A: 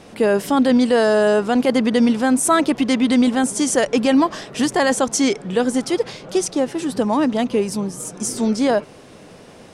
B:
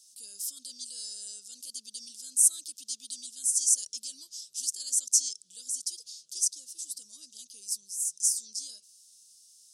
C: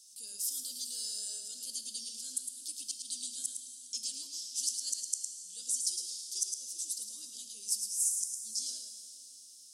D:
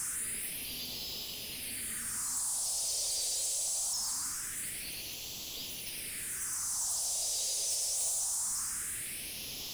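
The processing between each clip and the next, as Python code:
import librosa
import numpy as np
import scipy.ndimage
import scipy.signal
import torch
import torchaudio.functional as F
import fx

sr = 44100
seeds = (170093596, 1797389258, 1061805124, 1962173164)

y1 = scipy.signal.sosfilt(scipy.signal.cheby2(4, 50, 2200.0, 'highpass', fs=sr, output='sos'), x)
y1 = y1 * librosa.db_to_amplitude(1.0)
y2 = fx.gate_flip(y1, sr, shuts_db=-17.0, range_db=-33)
y2 = y2 + 10.0 ** (-6.0 / 20.0) * np.pad(y2, (int(108 * sr / 1000.0), 0))[:len(y2)]
y2 = fx.rev_plate(y2, sr, seeds[0], rt60_s=3.2, hf_ratio=0.95, predelay_ms=0, drr_db=6.0)
y3 = fx.delta_mod(y2, sr, bps=64000, step_db=-30.5)
y3 = 10.0 ** (-36.0 / 20.0) * np.tanh(y3 / 10.0 ** (-36.0 / 20.0))
y3 = fx.phaser_stages(y3, sr, stages=4, low_hz=230.0, high_hz=1500.0, hz=0.23, feedback_pct=45)
y3 = y3 * librosa.db_to_amplitude(4.5)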